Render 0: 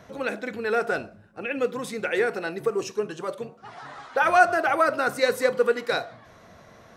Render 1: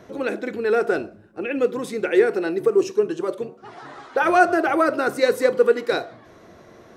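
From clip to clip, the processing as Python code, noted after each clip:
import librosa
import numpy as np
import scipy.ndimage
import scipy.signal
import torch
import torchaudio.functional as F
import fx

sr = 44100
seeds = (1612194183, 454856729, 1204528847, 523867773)

y = fx.peak_eq(x, sr, hz=350.0, db=12.5, octaves=0.73)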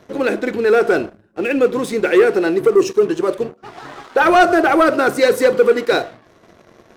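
y = fx.leveller(x, sr, passes=2)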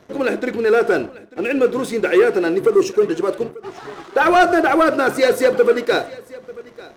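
y = x + 10.0 ** (-20.5 / 20.0) * np.pad(x, (int(892 * sr / 1000.0), 0))[:len(x)]
y = F.gain(torch.from_numpy(y), -1.5).numpy()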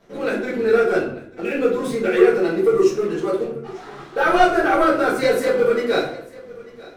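y = fx.room_shoebox(x, sr, seeds[0], volume_m3=65.0, walls='mixed', distance_m=1.6)
y = F.gain(torch.from_numpy(y), -10.5).numpy()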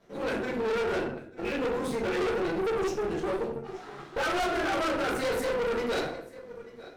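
y = fx.tube_stage(x, sr, drive_db=24.0, bias=0.75)
y = F.gain(torch.from_numpy(y), -2.0).numpy()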